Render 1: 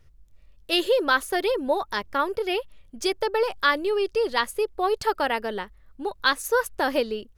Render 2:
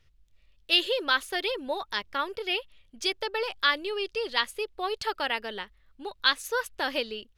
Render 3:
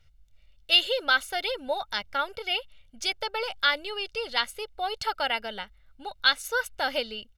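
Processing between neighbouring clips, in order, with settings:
parametric band 3,200 Hz +12 dB 1.9 octaves; level −9 dB
comb filter 1.4 ms, depth 64%

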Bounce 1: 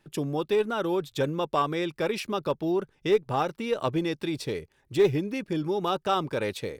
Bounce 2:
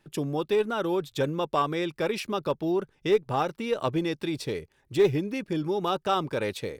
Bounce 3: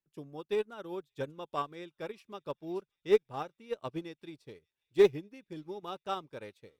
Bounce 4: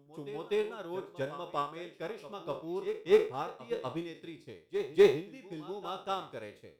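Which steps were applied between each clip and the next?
no processing that can be heard
delay with a high-pass on its return 579 ms, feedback 64%, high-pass 2,700 Hz, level −17.5 dB; expander for the loud parts 2.5 to 1, over −37 dBFS
peak hold with a decay on every bin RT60 0.37 s; backwards echo 247 ms −12.5 dB

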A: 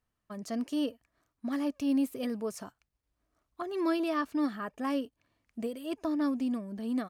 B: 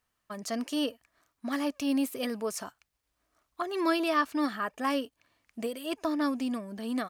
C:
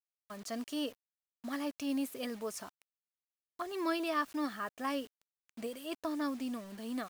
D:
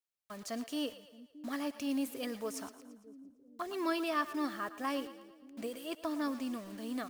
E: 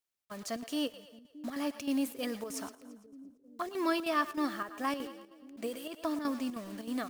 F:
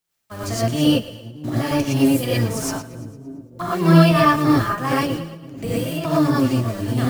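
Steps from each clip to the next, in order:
low-shelf EQ 490 Hz −11 dB; level +8 dB
bit reduction 8 bits; level −6.5 dB
echo with a time of its own for lows and highs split 410 Hz, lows 622 ms, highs 113 ms, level −14 dB
square-wave tremolo 3.2 Hz, depth 60%, duty 80%; level +3 dB
sub-octave generator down 1 octave, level +4 dB; reverb whose tail is shaped and stops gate 140 ms rising, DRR −7.5 dB; level +6.5 dB

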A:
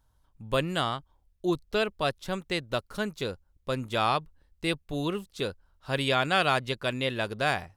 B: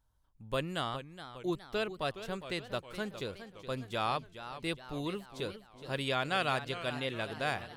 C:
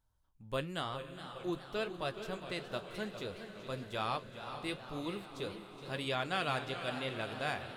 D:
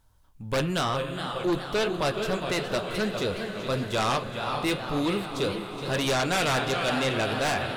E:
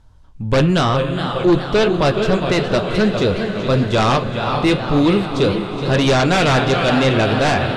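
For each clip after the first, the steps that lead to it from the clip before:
feedback echo with a swinging delay time 415 ms, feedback 53%, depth 161 cents, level −12 dB; level −7 dB
flanger 0.97 Hz, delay 8.8 ms, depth 6.9 ms, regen −60%; feedback delay with all-pass diffusion 471 ms, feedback 62%, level −11 dB; level +1 dB
on a send at −17.5 dB: convolution reverb RT60 0.75 s, pre-delay 4 ms; on the sum: sine wavefolder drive 11 dB, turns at −20.5 dBFS
low-pass filter 6,200 Hz 12 dB per octave; low-shelf EQ 450 Hz +7 dB; level +8 dB

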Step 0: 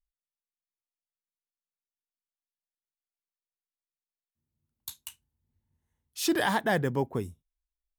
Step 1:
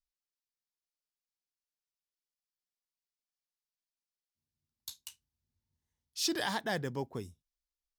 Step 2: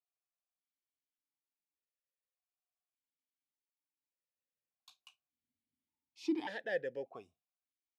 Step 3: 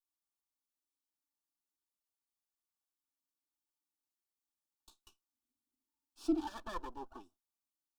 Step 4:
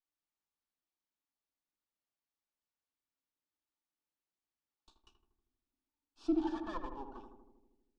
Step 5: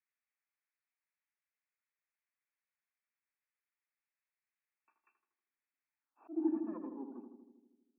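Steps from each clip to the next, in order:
parametric band 5,000 Hz +11.5 dB 1.1 octaves; level −8.5 dB
formant filter that steps through the vowels 1.7 Hz; level +6.5 dB
lower of the sound and its delayed copy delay 3.4 ms; phaser with its sweep stopped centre 550 Hz, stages 6; level +2.5 dB
high-frequency loss of the air 120 metres; feedback echo with a low-pass in the loop 79 ms, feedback 71%, low-pass 1,100 Hz, level −5 dB
brick-wall band-pass 180–2,700 Hz; volume swells 247 ms; band-pass filter sweep 2,000 Hz → 250 Hz, 0:05.97–0:06.52; level +8 dB

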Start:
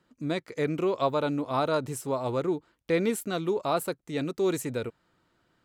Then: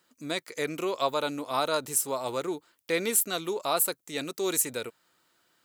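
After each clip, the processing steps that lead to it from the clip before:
RIAA equalisation recording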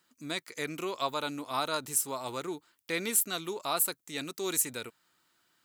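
parametric band 520 Hz −6.5 dB 0.9 octaves
level −2 dB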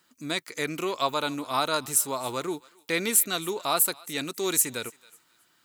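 feedback echo with a high-pass in the loop 272 ms, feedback 26%, high-pass 1,100 Hz, level −21 dB
level +5.5 dB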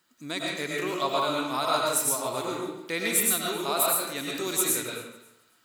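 convolution reverb RT60 0.85 s, pre-delay 68 ms, DRR −3 dB
level −4 dB

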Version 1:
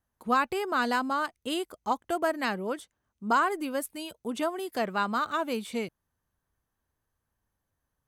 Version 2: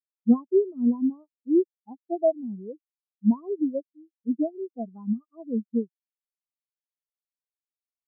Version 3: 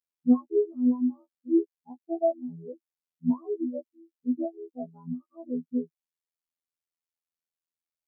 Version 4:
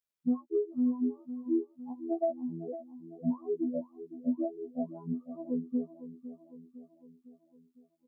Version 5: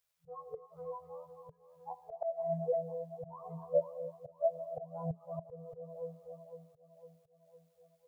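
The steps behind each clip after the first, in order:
treble cut that deepens with the level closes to 960 Hz, closed at −25.5 dBFS; tilt shelving filter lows +6 dB, about 760 Hz; every bin expanded away from the loudest bin 4 to 1; level +7.5 dB
phases set to zero 83 Hz
downward compressor 4 to 1, threshold −27 dBFS, peak gain reduction 11 dB; repeating echo 506 ms, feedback 55%, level −13.5 dB
reverb whose tail is shaped and stops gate 330 ms rising, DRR 10 dB; volume swells 230 ms; brick-wall band-stop 170–440 Hz; level +8.5 dB

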